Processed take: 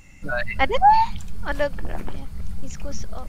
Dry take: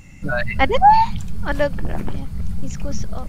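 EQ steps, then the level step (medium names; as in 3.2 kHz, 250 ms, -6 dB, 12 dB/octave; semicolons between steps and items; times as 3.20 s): peaking EQ 140 Hz -7.5 dB 2.2 oct; -2.5 dB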